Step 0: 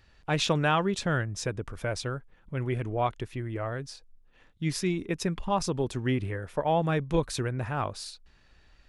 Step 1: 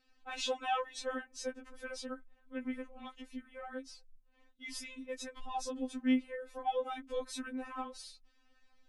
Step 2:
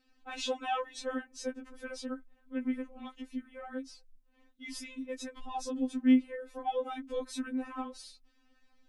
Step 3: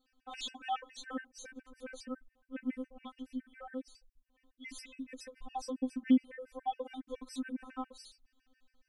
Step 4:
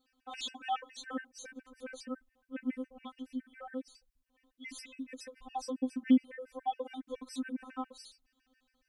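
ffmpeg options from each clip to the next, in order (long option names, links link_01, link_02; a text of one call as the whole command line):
ffmpeg -i in.wav -af "afftfilt=real='re*3.46*eq(mod(b,12),0)':imag='im*3.46*eq(mod(b,12),0)':win_size=2048:overlap=0.75,volume=-6.5dB" out.wav
ffmpeg -i in.wav -af "equalizer=frequency=290:width_type=o:width=0.88:gain=7.5" out.wav
ffmpeg -i in.wav -af "afftfilt=real='re*gt(sin(2*PI*7.2*pts/sr)*(1-2*mod(floor(b*sr/1024/1500),2)),0)':imag='im*gt(sin(2*PI*7.2*pts/sr)*(1-2*mod(floor(b*sr/1024/1500),2)),0)':win_size=1024:overlap=0.75,volume=-1.5dB" out.wav
ffmpeg -i in.wav -af "highpass=frequency=64:poles=1,volume=1.5dB" out.wav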